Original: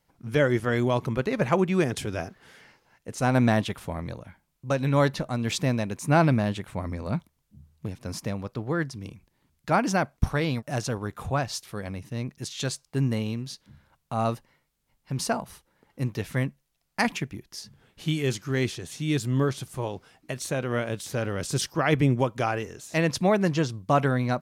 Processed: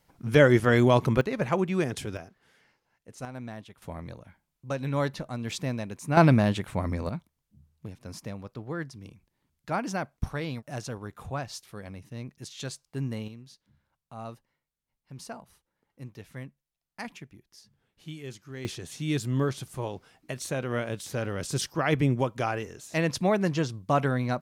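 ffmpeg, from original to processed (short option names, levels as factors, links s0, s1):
-af "asetnsamples=n=441:p=0,asendcmd='1.21 volume volume -3.5dB;2.17 volume volume -11.5dB;3.25 volume volume -18.5dB;3.82 volume volume -6dB;6.17 volume volume 2.5dB;7.09 volume volume -7dB;13.28 volume volume -14dB;18.65 volume volume -2.5dB',volume=1.58"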